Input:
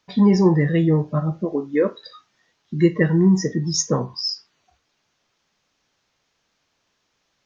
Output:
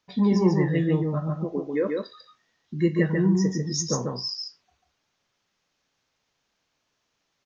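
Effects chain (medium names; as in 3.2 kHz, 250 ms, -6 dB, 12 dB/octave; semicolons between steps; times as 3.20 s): delay 143 ms -3.5 dB; trim -6.5 dB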